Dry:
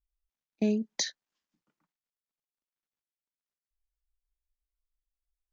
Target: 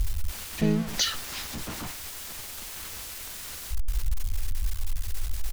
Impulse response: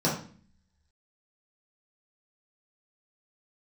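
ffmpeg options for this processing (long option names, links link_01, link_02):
-filter_complex "[0:a]aeval=exprs='val(0)+0.5*0.0282*sgn(val(0))':channel_layout=same,equalizer=frequency=670:width_type=o:width=2.6:gain=-2.5,asplit=2[link_01][link_02];[link_02]asetrate=33038,aresample=44100,atempo=1.33484,volume=-1dB[link_03];[link_01][link_03]amix=inputs=2:normalize=0,lowshelf=frequency=100:width_type=q:width=1.5:gain=9.5,volume=1.5dB"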